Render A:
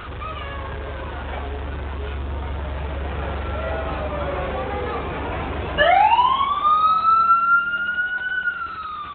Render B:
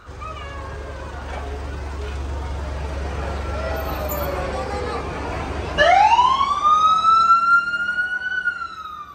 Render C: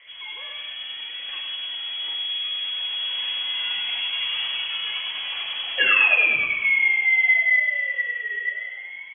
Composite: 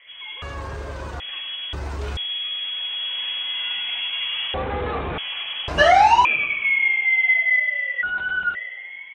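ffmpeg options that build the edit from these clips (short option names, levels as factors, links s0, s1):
-filter_complex "[1:a]asplit=3[s0][s1][s2];[0:a]asplit=2[s3][s4];[2:a]asplit=6[s5][s6][s7][s8][s9][s10];[s5]atrim=end=0.422[s11];[s0]atrim=start=0.418:end=1.202[s12];[s6]atrim=start=1.198:end=1.732[s13];[s1]atrim=start=1.728:end=2.172[s14];[s7]atrim=start=2.168:end=4.542[s15];[s3]atrim=start=4.538:end=5.182[s16];[s8]atrim=start=5.178:end=5.682[s17];[s2]atrim=start=5.678:end=6.252[s18];[s9]atrim=start=6.248:end=8.032[s19];[s4]atrim=start=8.028:end=8.552[s20];[s10]atrim=start=8.548[s21];[s11][s12]acrossfade=d=0.004:c1=hsin:c2=hsin[s22];[s22][s13]acrossfade=d=0.004:c1=hsin:c2=hsin[s23];[s23][s14]acrossfade=d=0.004:c1=hsin:c2=hsin[s24];[s24][s15]acrossfade=d=0.004:c1=hsin:c2=hsin[s25];[s25][s16]acrossfade=d=0.004:c1=hsin:c2=hsin[s26];[s26][s17]acrossfade=d=0.004:c1=hsin:c2=hsin[s27];[s27][s18]acrossfade=d=0.004:c1=hsin:c2=hsin[s28];[s28][s19]acrossfade=d=0.004:c1=hsin:c2=hsin[s29];[s29][s20]acrossfade=d=0.004:c1=hsin:c2=hsin[s30];[s30][s21]acrossfade=d=0.004:c1=hsin:c2=hsin"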